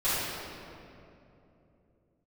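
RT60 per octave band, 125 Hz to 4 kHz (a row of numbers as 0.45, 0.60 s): 4.3, 3.8, 3.3, 2.5, 2.1, 1.6 s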